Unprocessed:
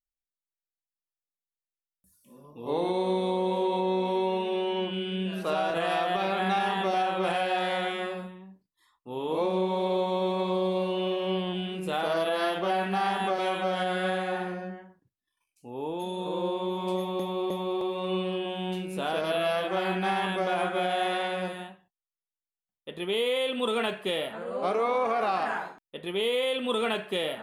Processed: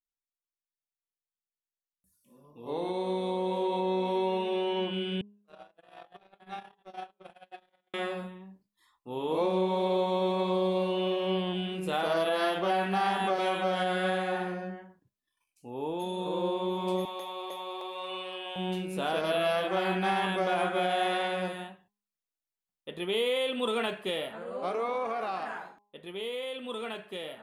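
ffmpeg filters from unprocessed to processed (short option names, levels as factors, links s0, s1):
-filter_complex "[0:a]asettb=1/sr,asplit=3[s0][s1][s2];[s0]atrim=end=5.214[s3];[s1]atrim=start=5.21:end=7.94,asetpts=PTS-STARTPTS,afade=t=in:d=0.004:c=qsin,afade=t=out:st=2.726:d=0.004:c=qsin,agate=range=0.00178:threshold=0.0631:ratio=16:release=100:detection=peak[s4];[s2]atrim=start=7.936[s5];[s3][s4]acrossfade=d=0.004:c1=hsin:c2=qsin[s6];[s6][s5]acrossfade=d=0.004:c1=qsin:c2=hsin,asettb=1/sr,asplit=3[s7][s8][s9];[s7]atrim=end=17.054[s10];[s8]atrim=start=17.05:end=18.56,asetpts=PTS-STARTPTS,afade=t=in:d=0.004:c=qsin,afade=t=out:st=1.506:d=0.004:c=qsin,highpass=760[s11];[s9]atrim=start=18.556[s12];[s10][s11]acrossfade=d=0.004:c1=hsin:c2=qsin[s13];[s13][s12]acrossfade=d=0.004:c1=qsin:c2=hsin,dynaudnorm=f=210:g=31:m=2.66,bandreject=f=205.2:t=h:w=4,bandreject=f=410.4:t=h:w=4,bandreject=f=615.6:t=h:w=4,bandreject=f=820.8:t=h:w=4,bandreject=f=1026:t=h:w=4,volume=0.355"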